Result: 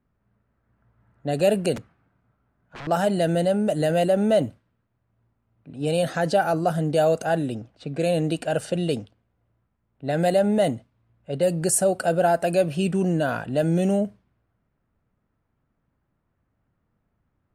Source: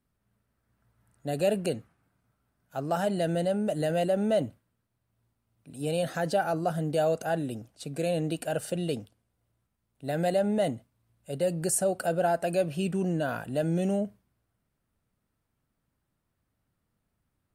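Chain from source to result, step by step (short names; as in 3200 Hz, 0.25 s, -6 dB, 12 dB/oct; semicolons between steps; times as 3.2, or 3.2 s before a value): 1.76–2.87 wrapped overs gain 35.5 dB; low-pass opened by the level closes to 1900 Hz, open at -23.5 dBFS; gain +6 dB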